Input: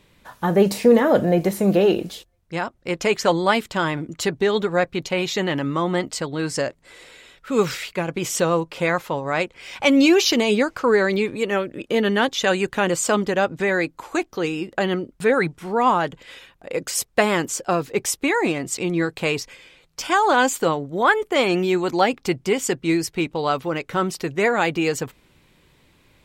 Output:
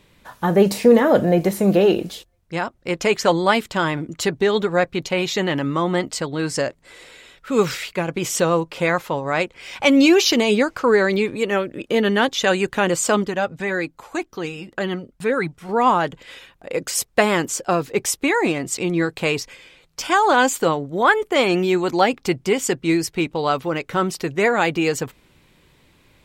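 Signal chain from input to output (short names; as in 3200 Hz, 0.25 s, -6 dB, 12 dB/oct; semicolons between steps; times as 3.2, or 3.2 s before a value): 13.24–15.69 flange 1.9 Hz, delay 0.5 ms, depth 1.2 ms, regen -51%; gain +1.5 dB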